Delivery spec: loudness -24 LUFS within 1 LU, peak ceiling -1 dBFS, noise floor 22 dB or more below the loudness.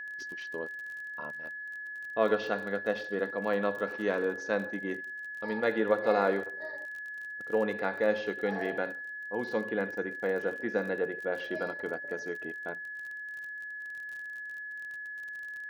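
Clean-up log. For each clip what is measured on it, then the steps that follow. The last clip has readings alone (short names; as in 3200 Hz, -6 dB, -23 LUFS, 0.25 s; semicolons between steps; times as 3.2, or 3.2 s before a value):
ticks 37/s; steady tone 1700 Hz; tone level -38 dBFS; loudness -33.0 LUFS; peak -13.0 dBFS; loudness target -24.0 LUFS
-> de-click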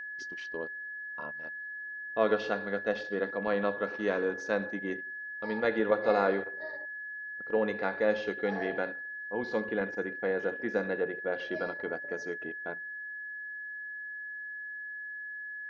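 ticks 0/s; steady tone 1700 Hz; tone level -38 dBFS
-> notch 1700 Hz, Q 30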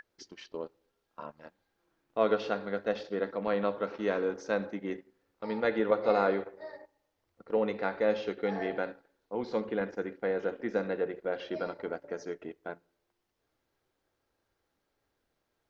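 steady tone none; loudness -32.5 LUFS; peak -13.0 dBFS; loudness target -24.0 LUFS
-> gain +8.5 dB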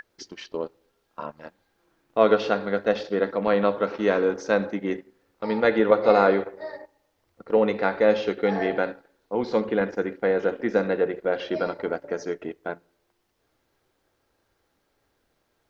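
loudness -24.0 LUFS; peak -4.5 dBFS; noise floor -72 dBFS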